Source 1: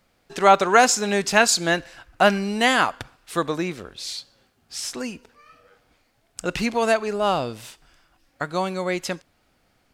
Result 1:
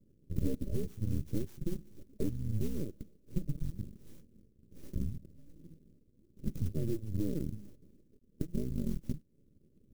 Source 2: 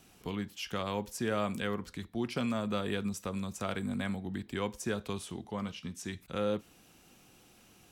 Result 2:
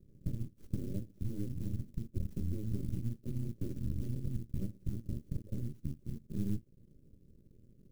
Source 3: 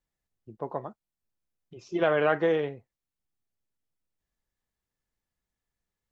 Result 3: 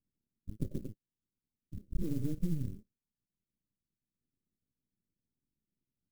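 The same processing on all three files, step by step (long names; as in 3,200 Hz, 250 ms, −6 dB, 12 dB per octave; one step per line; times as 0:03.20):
hearing-aid frequency compression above 2,700 Hz 1.5 to 1
low-pass that shuts in the quiet parts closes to 920 Hz, open at −20 dBFS
high-pass filter 100 Hz 12 dB per octave
high shelf with overshoot 3,000 Hz −13.5 dB, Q 3
downward compressor 3 to 1, threshold −38 dBFS
frequency shifter −320 Hz
half-wave rectification
linear-phase brick-wall band-stop 620–5,500 Hz
flat-topped bell 1,100 Hz −12 dB 2.8 octaves
converter with an unsteady clock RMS 0.044 ms
level +8.5 dB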